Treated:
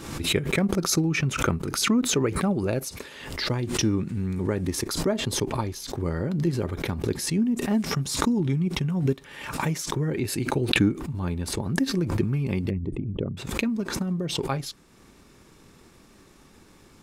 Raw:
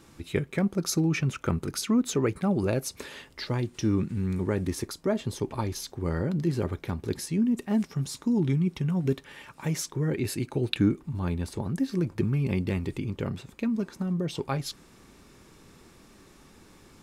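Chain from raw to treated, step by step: 12.70–13.37 s: resonances exaggerated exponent 2; transient shaper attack +3 dB, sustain -3 dB; swell ahead of each attack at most 59 dB/s

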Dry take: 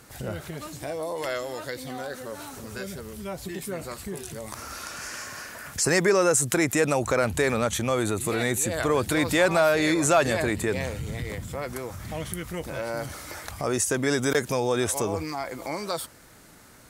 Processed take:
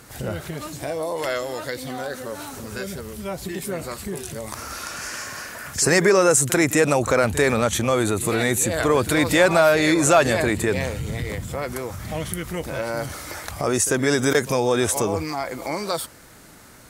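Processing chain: reverse echo 44 ms -16 dB; trim +4.5 dB

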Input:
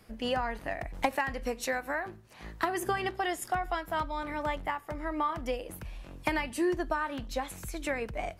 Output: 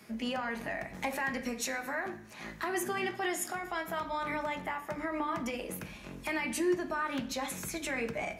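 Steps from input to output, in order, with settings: peak limiter -28.5 dBFS, peak gain reduction 11.5 dB; reverberation RT60 0.65 s, pre-delay 3 ms, DRR 4 dB; trim +4 dB

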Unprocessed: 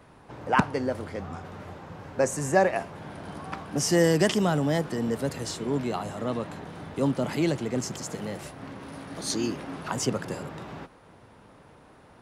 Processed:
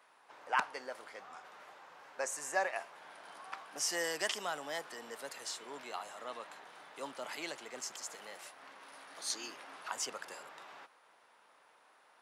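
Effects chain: high-pass 890 Hz 12 dB/octave; trim -6 dB

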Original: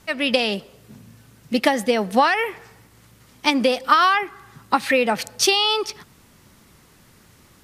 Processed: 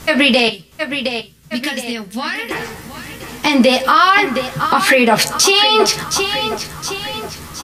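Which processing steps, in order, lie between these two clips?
0.48–2.51 s: amplifier tone stack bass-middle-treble 6-0-2; compression 4:1, threshold -22 dBFS, peak gain reduction 10.5 dB; doubling 13 ms -3.5 dB; feedback delay 716 ms, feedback 49%, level -12 dB; gated-style reverb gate 80 ms falling, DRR 11 dB; loudness maximiser +17 dB; trim -1 dB

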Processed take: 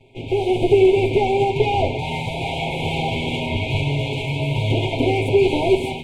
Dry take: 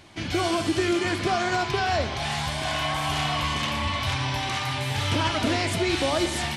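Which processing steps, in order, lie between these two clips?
comb filter that takes the minimum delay 8.3 ms; tone controls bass +9 dB, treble -2 dB; level rider gain up to 8 dB; FFT filter 120 Hz 0 dB, 170 Hz -4 dB, 390 Hz +11 dB, 1.3 kHz -2 dB, 1.8 kHz +8 dB, 3.2 kHz 0 dB, 4.9 kHz -16 dB, 7.3 kHz -6 dB, 12 kHz -13 dB; speed mistake 44.1 kHz file played as 48 kHz; FFT band-reject 1–2.1 kHz; trim -6 dB

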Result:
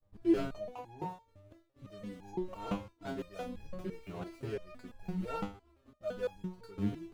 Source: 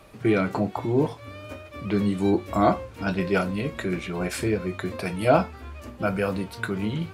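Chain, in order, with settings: median filter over 25 samples; wind noise 84 Hz -40 dBFS; expander -32 dBFS; resonator arpeggio 5.9 Hz 100–830 Hz; trim +1.5 dB

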